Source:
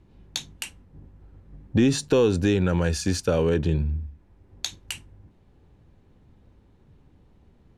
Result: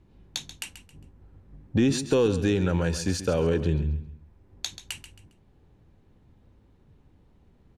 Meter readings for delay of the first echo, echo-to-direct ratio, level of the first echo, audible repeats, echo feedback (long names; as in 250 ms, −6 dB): 135 ms, −12.0 dB, −12.5 dB, 3, 30%